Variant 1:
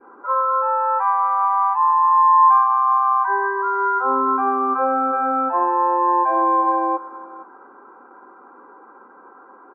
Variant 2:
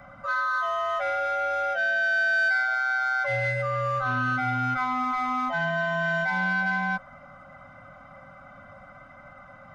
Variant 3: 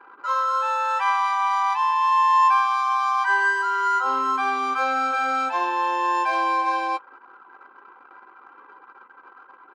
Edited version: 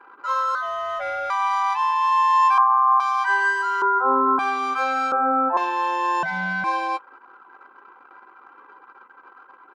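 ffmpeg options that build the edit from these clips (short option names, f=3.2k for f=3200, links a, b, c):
-filter_complex "[1:a]asplit=2[a][b];[0:a]asplit=3[c][d][e];[2:a]asplit=6[f][g][h][i][j][k];[f]atrim=end=0.552[l];[a]atrim=start=0.548:end=1.302[m];[g]atrim=start=1.298:end=2.582[n];[c]atrim=start=2.578:end=3.002[o];[h]atrim=start=2.998:end=3.822[p];[d]atrim=start=3.818:end=4.392[q];[i]atrim=start=4.388:end=5.122[r];[e]atrim=start=5.118:end=5.572[s];[j]atrim=start=5.568:end=6.232[t];[b]atrim=start=6.228:end=6.642[u];[k]atrim=start=6.638[v];[l][m]acrossfade=d=0.004:c1=hsin:c2=hsin[w];[w][n]acrossfade=d=0.004:c1=hsin:c2=hsin[x];[x][o]acrossfade=d=0.004:c1=hsin:c2=hsin[y];[y][p]acrossfade=d=0.004:c1=hsin:c2=hsin[z];[z][q]acrossfade=d=0.004:c1=hsin:c2=hsin[aa];[aa][r]acrossfade=d=0.004:c1=hsin:c2=hsin[ab];[ab][s]acrossfade=d=0.004:c1=hsin:c2=hsin[ac];[ac][t]acrossfade=d=0.004:c1=hsin:c2=hsin[ad];[ad][u]acrossfade=d=0.004:c1=hsin:c2=hsin[ae];[ae][v]acrossfade=d=0.004:c1=hsin:c2=hsin"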